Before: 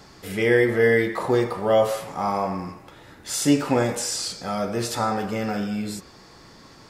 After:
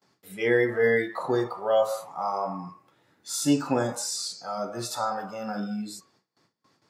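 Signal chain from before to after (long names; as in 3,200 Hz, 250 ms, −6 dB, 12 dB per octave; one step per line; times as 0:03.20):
noise reduction from a noise print of the clip's start 14 dB
noise gate with hold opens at −51 dBFS
high-pass filter 110 Hz 24 dB per octave
level −3.5 dB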